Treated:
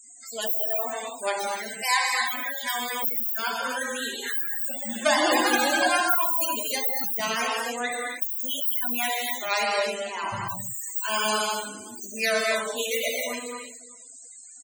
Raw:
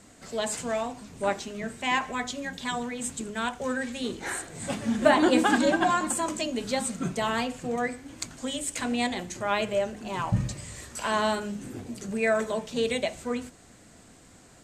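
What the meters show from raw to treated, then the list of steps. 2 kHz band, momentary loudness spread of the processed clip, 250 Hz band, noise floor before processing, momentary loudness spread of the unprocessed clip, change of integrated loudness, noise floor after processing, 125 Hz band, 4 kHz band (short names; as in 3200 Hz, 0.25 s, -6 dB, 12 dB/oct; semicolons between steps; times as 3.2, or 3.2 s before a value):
+4.5 dB, 11 LU, -7.0 dB, -54 dBFS, 12 LU, +3.5 dB, -46 dBFS, -12.5 dB, +6.0 dB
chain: tracing distortion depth 0.49 ms; tilt +4.5 dB/oct; on a send: feedback echo 0.377 s, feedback 29%, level -19 dB; on the sum: non-linear reverb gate 0.33 s flat, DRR -3.5 dB; loudest bins only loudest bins 64; gain -2.5 dB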